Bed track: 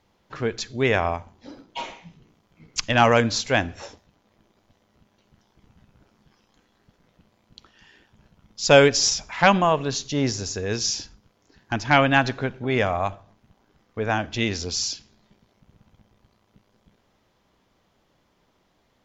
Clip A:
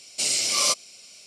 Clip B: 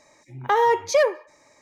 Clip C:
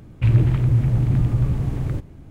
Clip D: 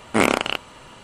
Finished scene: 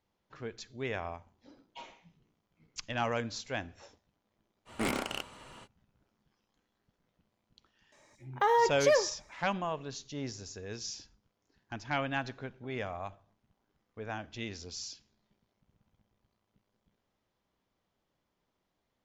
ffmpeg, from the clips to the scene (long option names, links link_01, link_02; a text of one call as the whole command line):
ffmpeg -i bed.wav -i cue0.wav -i cue1.wav -i cue2.wav -i cue3.wav -filter_complex "[0:a]volume=-15.5dB[link_01];[4:a]asoftclip=type=tanh:threshold=-18.5dB,atrim=end=1.03,asetpts=PTS-STARTPTS,volume=-7.5dB,afade=type=in:duration=0.05,afade=type=out:start_time=0.98:duration=0.05,adelay=205065S[link_02];[2:a]atrim=end=1.61,asetpts=PTS-STARTPTS,volume=-7dB,afade=type=in:duration=0.004:curve=hsin,afade=type=out:start_time=1.606:duration=0.004:curve=hsin,adelay=7920[link_03];[link_01][link_02][link_03]amix=inputs=3:normalize=0" out.wav